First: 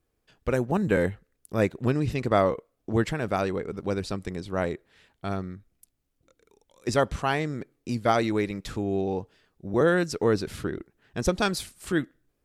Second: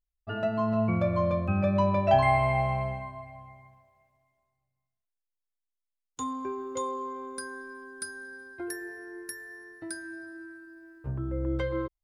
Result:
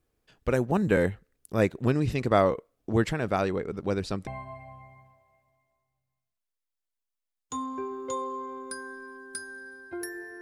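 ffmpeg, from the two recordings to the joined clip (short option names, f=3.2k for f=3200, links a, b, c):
-filter_complex "[0:a]asettb=1/sr,asplit=3[a][b][c];[a]atrim=end=3.124[d];[b]atrim=start=3.12:end=4.27,asetpts=PTS-STARTPTS,afade=t=in:d=0.004:c=qsin,afade=t=out:st=1.146:d=0.004:c=qsin,highshelf=f=8.2k:g=-6[e];[c]atrim=start=4.266[f];[d][e]acrossfade=d=0.004:c1=hsin:c2=qsin[g];[g][f]acrossfade=d=0.004:c1=qsin:c2=hsin,apad=whole_dur=10.41,atrim=end=10.41,atrim=end=4.272[h];[1:a]atrim=start=2.938:end=9.08[i];[h][i]acrossfade=d=0.004:c1=hsin:c2=hsin"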